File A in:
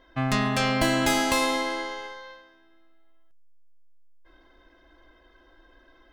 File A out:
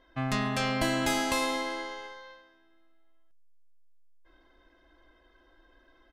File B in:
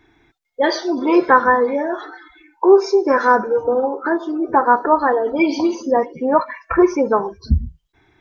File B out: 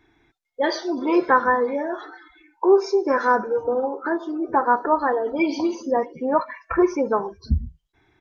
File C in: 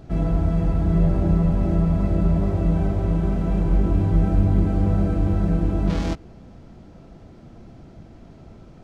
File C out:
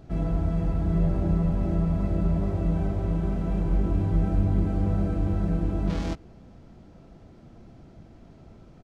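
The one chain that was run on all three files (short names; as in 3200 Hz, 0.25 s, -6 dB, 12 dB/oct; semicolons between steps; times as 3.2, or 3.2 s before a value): downsampling 32000 Hz; gain -5 dB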